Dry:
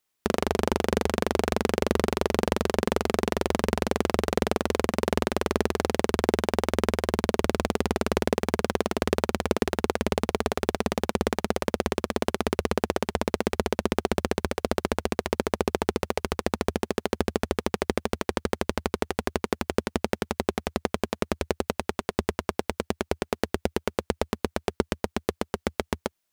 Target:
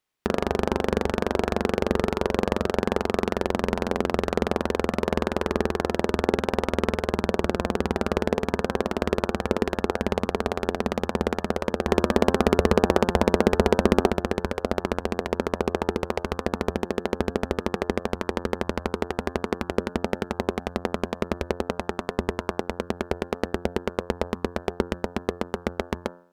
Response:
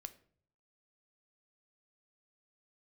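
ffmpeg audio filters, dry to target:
-filter_complex "[0:a]highshelf=f=4900:g=-11,bandreject=f=87.62:t=h:w=4,bandreject=f=175.24:t=h:w=4,bandreject=f=262.86:t=h:w=4,bandreject=f=350.48:t=h:w=4,bandreject=f=438.1:t=h:w=4,bandreject=f=525.72:t=h:w=4,bandreject=f=613.34:t=h:w=4,bandreject=f=700.96:t=h:w=4,bandreject=f=788.58:t=h:w=4,bandreject=f=876.2:t=h:w=4,bandreject=f=963.82:t=h:w=4,bandreject=f=1051.44:t=h:w=4,bandreject=f=1139.06:t=h:w=4,bandreject=f=1226.68:t=h:w=4,bandreject=f=1314.3:t=h:w=4,bandreject=f=1401.92:t=h:w=4,bandreject=f=1489.54:t=h:w=4,bandreject=f=1577.16:t=h:w=4,bandreject=f=1664.78:t=h:w=4,bandreject=f=1752.4:t=h:w=4,asettb=1/sr,asplit=3[s0][s1][s2];[s0]atrim=end=11.884[s3];[s1]atrim=start=11.88:end=14.1,asetpts=PTS-STARTPTS,afade=t=in:d=0.004:c=qsin,afade=t=out:st=2.216:d=0.004:c=qsin,acontrast=86[s4];[s2]atrim=start=14.096[s5];[s3][s4]acrossfade=d=0.004:c1=hsin:c2=qsin[s6];[s6][s5]acrossfade=d=0.004:c1=qsin:c2=hsin,volume=1.19"

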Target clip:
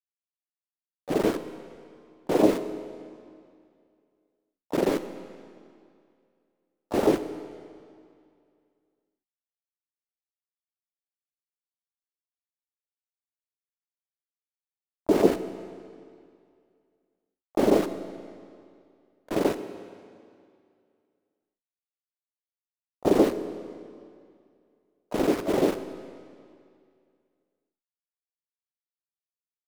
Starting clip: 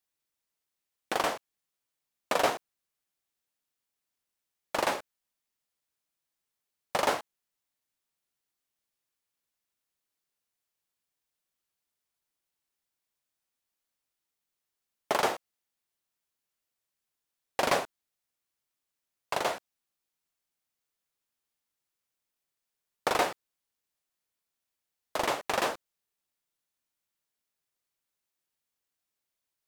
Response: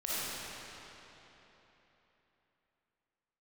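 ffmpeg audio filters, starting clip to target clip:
-filter_complex "[0:a]agate=range=0.0126:threshold=0.01:ratio=16:detection=peak,lowpass=f=400:t=q:w=4.9,aeval=exprs='val(0)*gte(abs(val(0)),0.0266)':c=same,asplit=4[s0][s1][s2][s3];[s1]asetrate=22050,aresample=44100,atempo=2,volume=0.316[s4];[s2]asetrate=33038,aresample=44100,atempo=1.33484,volume=0.891[s5];[s3]asetrate=66075,aresample=44100,atempo=0.66742,volume=0.447[s6];[s0][s4][s5][s6]amix=inputs=4:normalize=0,asplit=2[s7][s8];[1:a]atrim=start_sample=2205,asetrate=70560,aresample=44100[s9];[s8][s9]afir=irnorm=-1:irlink=0,volume=0.224[s10];[s7][s10]amix=inputs=2:normalize=0,volume=1.12"

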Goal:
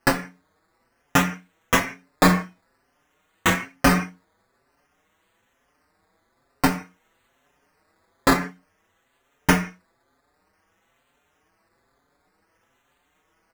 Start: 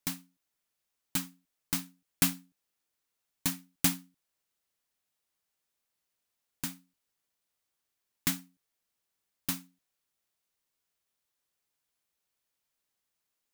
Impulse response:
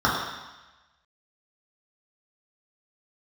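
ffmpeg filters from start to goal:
-filter_complex "[0:a]asettb=1/sr,asplit=3[s0][s1][s2];[s0]atrim=end=6.714[s3];[s1]atrim=start=6.71:end=8.33,asetpts=PTS-STARTPTS,afade=t=in:d=0.004:c=qsin,afade=t=out:st=1.616:d=0.004:c=qsin,aecho=1:1:3.6:0.59,atrim=end_sample=71442[s4];[s2]atrim=start=8.326[s5];[s3][s4]acrossfade=d=0.004:c1=hsin:c2=qsin[s6];[s6][s5]acrossfade=d=0.004:c1=qsin:c2=hsin,acrusher=samples=12:mix=1:aa=0.000001:lfo=1:lforange=7.2:lforate=0.52,asplit=2[s7][s8];[1:a]atrim=start_sample=2205,afade=t=out:st=0.33:d=0.01,atrim=end_sample=14994,asetrate=70560,aresample=44100[s9];[s8][s9]afir=irnorm=-1:irlink=0,volume=0.0631[s10];[s7][s10]amix=inputs=2:normalize=0,alimiter=level_in=8.91:limit=0.891:release=50:level=0:latency=1,asplit=2[s11][s12];[s12]adelay=5.5,afreqshift=1.1[s13];[s11][s13]amix=inputs=2:normalize=1,volume=0.891"

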